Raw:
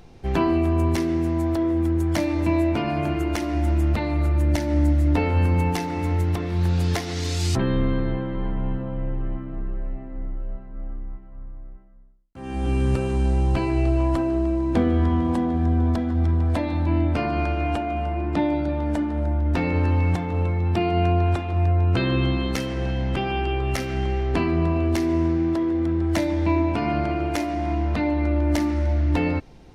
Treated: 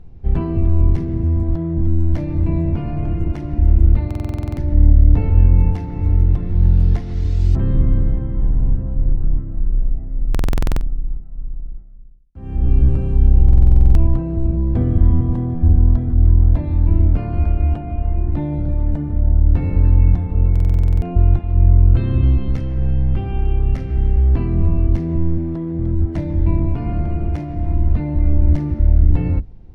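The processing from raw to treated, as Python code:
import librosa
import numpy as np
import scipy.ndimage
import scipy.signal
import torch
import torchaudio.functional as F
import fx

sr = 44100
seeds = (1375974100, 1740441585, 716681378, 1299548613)

y = fx.octave_divider(x, sr, octaves=1, level_db=0.0)
y = fx.riaa(y, sr, side='playback')
y = fx.buffer_glitch(y, sr, at_s=(4.06, 10.3, 13.44, 20.51), block=2048, repeats=10)
y = y * librosa.db_to_amplitude(-9.0)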